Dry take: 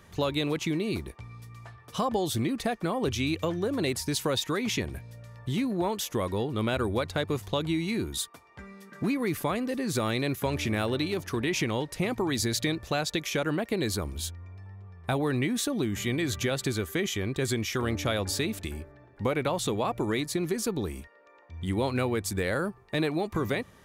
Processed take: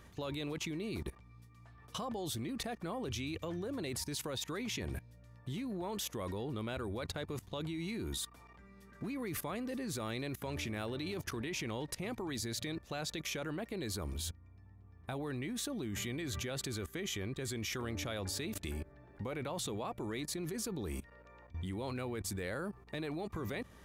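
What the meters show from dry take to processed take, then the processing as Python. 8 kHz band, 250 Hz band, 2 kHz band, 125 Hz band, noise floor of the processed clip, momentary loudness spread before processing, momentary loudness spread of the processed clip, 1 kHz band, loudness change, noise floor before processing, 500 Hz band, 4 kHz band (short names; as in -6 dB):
-7.0 dB, -10.5 dB, -10.5 dB, -10.0 dB, -59 dBFS, 11 LU, 8 LU, -11.5 dB, -10.5 dB, -56 dBFS, -11.5 dB, -9.0 dB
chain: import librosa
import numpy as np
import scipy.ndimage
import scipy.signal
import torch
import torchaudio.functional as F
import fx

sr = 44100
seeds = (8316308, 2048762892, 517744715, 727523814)

y = fx.level_steps(x, sr, step_db=20)
y = fx.add_hum(y, sr, base_hz=60, snr_db=22)
y = F.gain(torch.from_numpy(y), 1.0).numpy()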